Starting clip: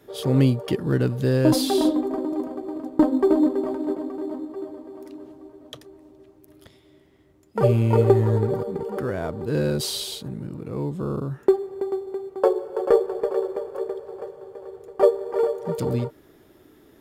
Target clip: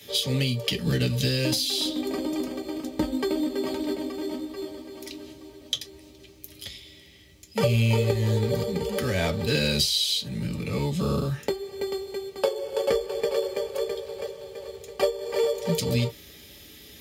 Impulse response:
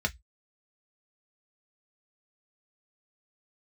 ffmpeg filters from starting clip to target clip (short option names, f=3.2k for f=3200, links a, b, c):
-filter_complex "[0:a]aexciter=amount=8.8:drive=6:freq=2.2k,acompressor=threshold=-21dB:ratio=10,asettb=1/sr,asplit=3[a][b][c];[a]atrim=end=9.184[d];[b]atrim=start=9.18:end=11.42,asetpts=PTS-STARTPTS,afade=t=in:d=0.004:c=qsin,afade=t=out:st=2.236:d=0.004:c=qsin,equalizer=f=1.3k:w=0.57:g=4[e];[c]atrim=start=11.416[f];[d][e]acrossfade=d=0.004:c1=hsin:c2=qsin[g];[g][f]acrossfade=d=0.004:c1=qsin:c2=hsin[h];[1:a]atrim=start_sample=2205,asetrate=38808,aresample=44100[i];[h][i]afir=irnorm=-1:irlink=0,volume=-7.5dB"